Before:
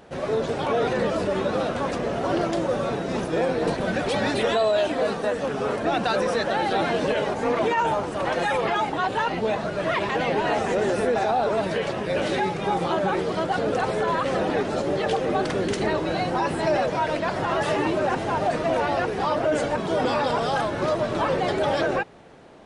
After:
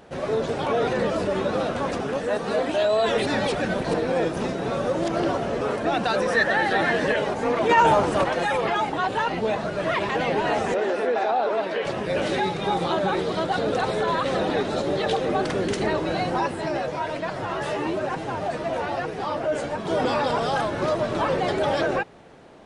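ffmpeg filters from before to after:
ffmpeg -i in.wav -filter_complex "[0:a]asettb=1/sr,asplit=3[link_01][link_02][link_03];[link_01]atrim=end=6.304[link_04];[link_02]atrim=start=6.3:end=7.16,asetpts=PTS-STARTPTS,afade=type=in:duration=0.004:curve=qsin,afade=type=out:start_time=0.856:duration=0.004:curve=qsin,equalizer=frequency=1800:width=5.7:gain=14[link_05];[link_03]atrim=start=7.156[link_06];[link_04][link_05]acrossfade=duration=0.004:curve1=hsin:curve2=qsin[link_07];[link_07][link_06]acrossfade=duration=0.004:curve1=qsin:curve2=hsin,asettb=1/sr,asplit=3[link_08][link_09][link_10];[link_08]atrim=end=7.694[link_11];[link_09]atrim=start=7.69:end=8.24,asetpts=PTS-STARTPTS,afade=type=in:duration=0.004:curve=qsin,afade=type=out:start_time=0.546:duration=0.004:curve=qsin,acontrast=59[link_12];[link_10]atrim=start=8.236[link_13];[link_11][link_12]acrossfade=duration=0.004:curve1=hsin:curve2=qsin[link_14];[link_14][link_13]acrossfade=duration=0.004:curve1=qsin:curve2=hsin,asettb=1/sr,asplit=3[link_15][link_16][link_17];[link_15]atrim=end=10.744[link_18];[link_16]atrim=start=10.74:end=11.85,asetpts=PTS-STARTPTS,afade=type=in:duration=0.004:curve=qsin,afade=type=out:start_time=1.106:duration=0.004:curve=qsin,acrossover=split=250 4700:gain=0.0708 1 0.2[link_19][link_20][link_21];[link_19][link_20][link_21]amix=inputs=3:normalize=0[link_22];[link_17]atrim=start=11.846[link_23];[link_18][link_22]acrossfade=duration=0.004:curve1=hsin:curve2=qsin[link_24];[link_24][link_23]acrossfade=duration=0.004:curve1=qsin:curve2=hsin,asettb=1/sr,asplit=3[link_25][link_26][link_27];[link_25]atrim=end=12.394[link_28];[link_26]atrim=start=12.39:end=15.28,asetpts=PTS-STARTPTS,afade=type=in:duration=0.004:curve=qsin,afade=type=out:start_time=2.886:duration=0.004:curve=qsin,equalizer=frequency=3800:width_type=o:width=0.23:gain=8.5[link_29];[link_27]atrim=start=15.276[link_30];[link_28][link_29]acrossfade=duration=0.004:curve1=hsin:curve2=qsin[link_31];[link_31][link_30]acrossfade=duration=0.004:curve1=qsin:curve2=hsin,asplit=3[link_32][link_33][link_34];[link_32]afade=type=out:start_time=16.46:duration=0.02[link_35];[link_33]flanger=delay=6.2:depth=8.7:regen=40:speed=1.1:shape=sinusoidal,afade=type=in:start_time=16.46:duration=0.02,afade=type=out:start_time=19.85:duration=0.02[link_36];[link_34]afade=type=in:start_time=19.85:duration=0.02[link_37];[link_35][link_36][link_37]amix=inputs=3:normalize=0,asplit=3[link_38][link_39][link_40];[link_38]atrim=end=2.002[link_41];[link_39]atrim=start=1.998:end=5.612,asetpts=PTS-STARTPTS,areverse[link_42];[link_40]atrim=start=5.608[link_43];[link_41][link_42]acrossfade=duration=0.004:curve1=hsin:curve2=hsin[link_44];[link_44][link_43]acrossfade=duration=0.004:curve1=hsin:curve2=hsin" out.wav

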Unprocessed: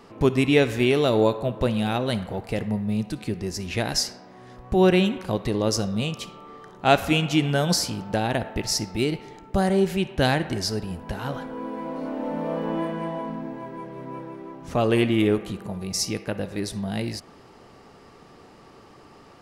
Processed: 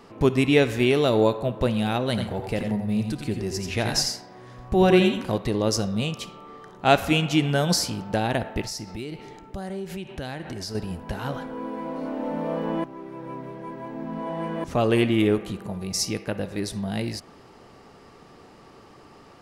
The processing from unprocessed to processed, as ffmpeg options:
ffmpeg -i in.wav -filter_complex "[0:a]asettb=1/sr,asplit=3[link_01][link_02][link_03];[link_01]atrim=end=2.094[link_04];[link_02]atrim=start=2.09:end=5.38,asetpts=PTS-STARTPTS,afade=type=in:duration=0.004:curve=qsin,afade=type=out:start_time=3.286:duration=0.004:curve=qsin,aecho=1:1:82|90|131:0.316|0.422|0.141,atrim=end_sample=145089[link_05];[link_03]atrim=start=5.376[link_06];[link_04][link_05]acrossfade=duration=0.004:curve1=hsin:curve2=qsin[link_07];[link_07][link_06]acrossfade=duration=0.004:curve1=qsin:curve2=hsin,asettb=1/sr,asplit=3[link_08][link_09][link_10];[link_08]atrim=end=8.644[link_11];[link_09]atrim=start=8.64:end=10.75,asetpts=PTS-STARTPTS,afade=type=in:duration=0.004:curve=qsin,afade=type=out:start_time=2.106:duration=0.004:curve=qsin,acompressor=threshold=-31dB:ratio=4:attack=3.2:release=140:knee=1:detection=peak[link_12];[link_10]atrim=start=10.746[link_13];[link_11][link_12]acrossfade=duration=0.004:curve1=hsin:curve2=qsin[link_14];[link_14][link_13]acrossfade=duration=0.004:curve1=qsin:curve2=hsin,asplit=3[link_15][link_16][link_17];[link_15]atrim=end=12.842[link_18];[link_16]atrim=start=12.838:end=14.642,asetpts=PTS-STARTPTS,areverse[link_19];[link_17]atrim=start=14.638[link_20];[link_18][link_19]acrossfade=duration=0.004:curve1=hsin:curve2=hsin[link_21];[link_21][link_20]acrossfade=duration=0.004:curve1=hsin:curve2=hsin" out.wav

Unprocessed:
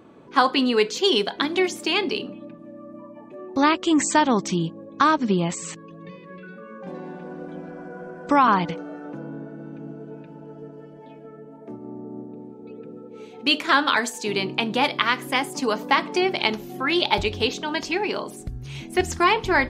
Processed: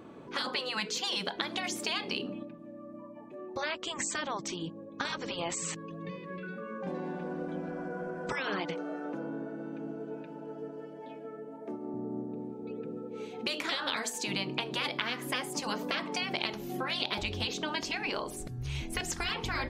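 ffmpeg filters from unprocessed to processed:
ffmpeg -i in.wav -filter_complex "[0:a]asettb=1/sr,asplit=3[link_01][link_02][link_03];[link_01]atrim=end=8.324[link_04];[link_02]atrim=start=8.32:end=11.94,asetpts=PTS-STARTPTS,afade=type=in:duration=0.004:curve=qsin,afade=type=out:start_time=3.616:duration=0.004:curve=qsin,highpass=240[link_05];[link_03]atrim=start=11.936[link_06];[link_04][link_05]acrossfade=duration=0.004:curve1=hsin:curve2=qsin[link_07];[link_07][link_06]acrossfade=duration=0.004:curve1=qsin:curve2=hsin,asplit=3[link_08][link_09][link_10];[link_08]afade=type=out:start_time=18.06:duration=0.02[link_11];[link_09]asubboost=boost=10.5:cutoff=56,afade=type=in:start_time=18.06:duration=0.02,afade=type=out:start_time=19.28:duration=0.02[link_12];[link_10]afade=type=in:start_time=19.28:duration=0.02[link_13];[link_11][link_12][link_13]amix=inputs=3:normalize=0,asplit=3[link_14][link_15][link_16];[link_14]atrim=end=2.432[link_17];[link_15]atrim=start=2.428:end=5.052,asetpts=PTS-STARTPTS,volume=-5.5dB[link_18];[link_16]atrim=start=5.048[link_19];[link_17][link_18]acrossfade=duration=0.004:curve1=hsin:curve2=hsin[link_20];[link_20][link_19]acrossfade=duration=0.004:curve1=hsin:curve2=hsin,afftfilt=real='re*lt(hypot(re,im),0.316)':imag='im*lt(hypot(re,im),0.316)':win_size=1024:overlap=0.75,acompressor=threshold=-32dB:ratio=2.5" out.wav

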